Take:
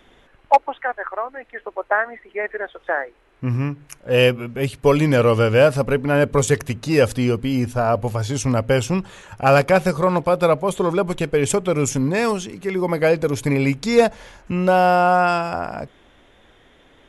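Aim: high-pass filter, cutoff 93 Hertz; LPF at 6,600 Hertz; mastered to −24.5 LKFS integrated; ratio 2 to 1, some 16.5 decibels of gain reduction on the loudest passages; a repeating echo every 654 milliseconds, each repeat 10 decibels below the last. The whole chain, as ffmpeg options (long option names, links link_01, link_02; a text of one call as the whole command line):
ffmpeg -i in.wav -af "highpass=93,lowpass=6600,acompressor=threshold=-40dB:ratio=2,aecho=1:1:654|1308|1962|2616:0.316|0.101|0.0324|0.0104,volume=8.5dB" out.wav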